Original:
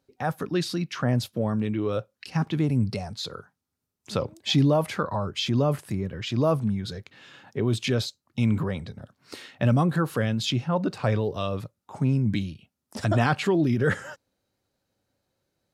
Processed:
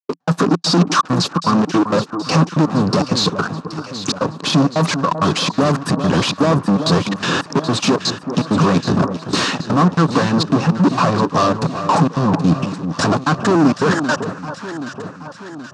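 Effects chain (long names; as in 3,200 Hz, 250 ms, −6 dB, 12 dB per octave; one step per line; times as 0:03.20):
mu-law and A-law mismatch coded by mu
harmonic and percussive parts rebalanced harmonic −6 dB
downward compressor 6 to 1, threshold −35 dBFS, peak gain reduction 15 dB
fuzz pedal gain 48 dB, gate −55 dBFS
gate pattern ".x.xxx.xx" 164 BPM −60 dB
loudspeaker in its box 150–6,900 Hz, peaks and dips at 170 Hz +9 dB, 280 Hz +7 dB, 1,100 Hz +8 dB, 2,100 Hz −10 dB, 3,200 Hz −6 dB
on a send: delay that swaps between a low-pass and a high-pass 388 ms, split 1,300 Hz, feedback 73%, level −9 dB
on the sum: level −1 dB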